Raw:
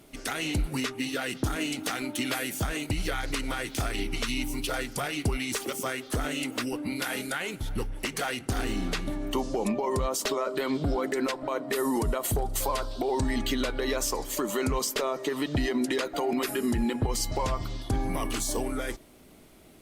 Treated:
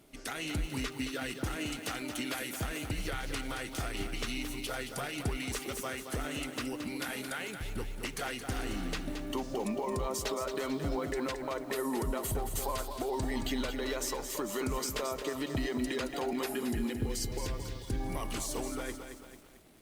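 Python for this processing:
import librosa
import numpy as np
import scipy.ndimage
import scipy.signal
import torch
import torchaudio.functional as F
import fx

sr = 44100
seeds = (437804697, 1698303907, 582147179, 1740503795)

y = fx.spec_box(x, sr, start_s=16.65, length_s=1.35, low_hz=520.0, high_hz=1400.0, gain_db=-9)
y = fx.echo_crushed(y, sr, ms=222, feedback_pct=55, bits=8, wet_db=-7.5)
y = F.gain(torch.from_numpy(y), -6.5).numpy()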